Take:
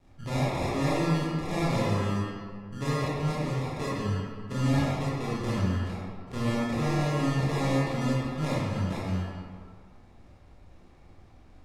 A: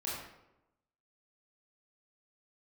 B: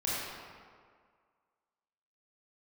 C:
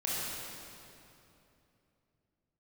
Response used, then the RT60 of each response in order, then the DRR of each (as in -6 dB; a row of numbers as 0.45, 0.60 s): B; 0.90, 1.9, 2.9 s; -7.0, -8.5, -7.0 dB